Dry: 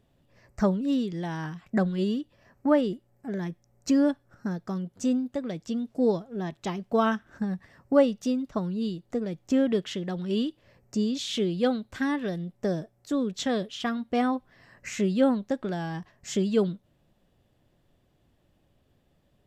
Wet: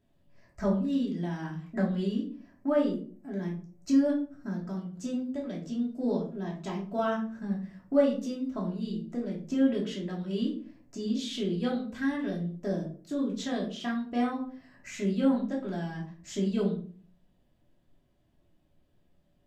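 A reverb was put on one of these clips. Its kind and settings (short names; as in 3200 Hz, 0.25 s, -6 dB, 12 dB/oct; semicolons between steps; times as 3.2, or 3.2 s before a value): shoebox room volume 340 m³, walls furnished, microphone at 2.9 m; gain -10 dB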